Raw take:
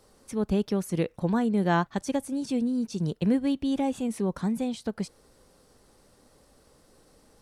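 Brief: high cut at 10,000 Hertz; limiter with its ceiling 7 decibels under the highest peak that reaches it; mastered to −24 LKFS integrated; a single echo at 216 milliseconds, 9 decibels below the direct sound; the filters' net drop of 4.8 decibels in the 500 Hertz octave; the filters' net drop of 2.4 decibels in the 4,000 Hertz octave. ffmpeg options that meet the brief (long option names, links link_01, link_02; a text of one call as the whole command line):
ffmpeg -i in.wav -af "lowpass=10000,equalizer=frequency=500:width_type=o:gain=-6,equalizer=frequency=4000:width_type=o:gain=-3,alimiter=limit=-21dB:level=0:latency=1,aecho=1:1:216:0.355,volume=6.5dB" out.wav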